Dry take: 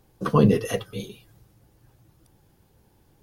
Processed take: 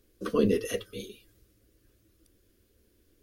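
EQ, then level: static phaser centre 350 Hz, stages 4; -2.5 dB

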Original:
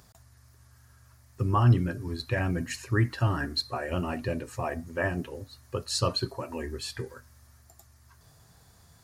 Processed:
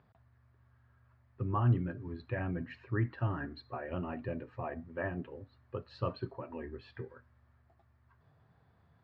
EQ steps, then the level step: high-pass 86 Hz; low-pass 3.7 kHz 12 dB/octave; distance through air 400 m; -6.0 dB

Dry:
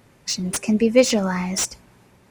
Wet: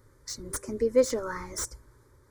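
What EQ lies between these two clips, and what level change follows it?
dynamic bell 5 kHz, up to -5 dB, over -36 dBFS, Q 1.1; bass shelf 120 Hz +12 dB; static phaser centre 730 Hz, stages 6; -5.5 dB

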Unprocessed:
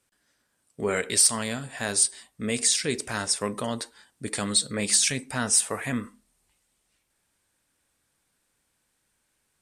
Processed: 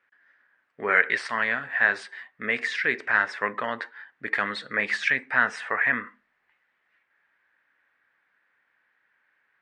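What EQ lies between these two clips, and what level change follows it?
high-pass 990 Hz 6 dB/octave; resonant low-pass 1.8 kHz, resonance Q 4; distance through air 76 m; +5.0 dB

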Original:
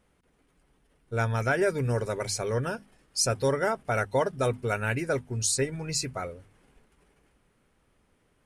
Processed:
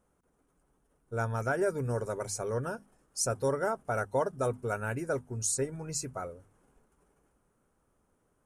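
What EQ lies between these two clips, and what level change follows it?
bass shelf 220 Hz -3.5 dB; high-order bell 3 kHz -11 dB; -3.0 dB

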